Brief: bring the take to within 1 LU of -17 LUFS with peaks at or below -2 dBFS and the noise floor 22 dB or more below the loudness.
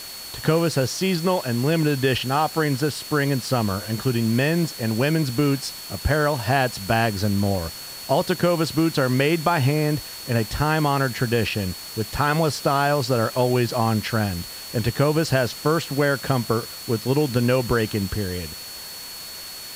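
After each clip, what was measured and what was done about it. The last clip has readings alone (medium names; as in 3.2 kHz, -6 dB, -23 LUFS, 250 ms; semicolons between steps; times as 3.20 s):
steady tone 4.4 kHz; tone level -37 dBFS; noise floor -36 dBFS; noise floor target -45 dBFS; loudness -22.5 LUFS; peak level -5.0 dBFS; loudness target -17.0 LUFS
-> band-stop 4.4 kHz, Q 30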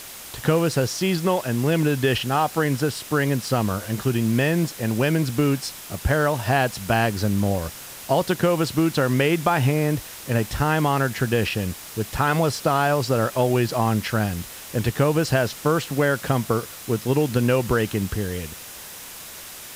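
steady tone not found; noise floor -39 dBFS; noise floor target -45 dBFS
-> noise reduction 6 dB, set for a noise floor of -39 dBFS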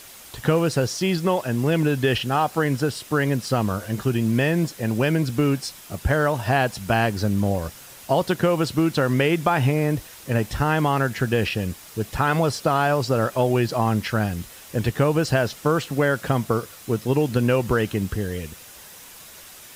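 noise floor -44 dBFS; noise floor target -45 dBFS
-> noise reduction 6 dB, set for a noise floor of -44 dBFS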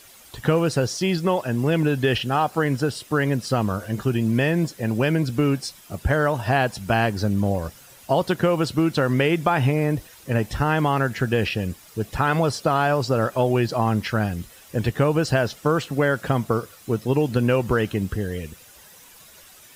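noise floor -48 dBFS; loudness -22.5 LUFS; peak level -5.0 dBFS; loudness target -17.0 LUFS
-> trim +5.5 dB; peak limiter -2 dBFS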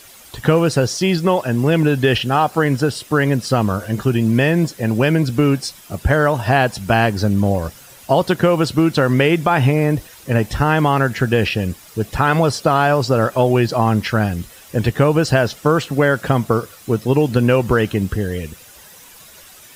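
loudness -17.0 LUFS; peak level -2.0 dBFS; noise floor -43 dBFS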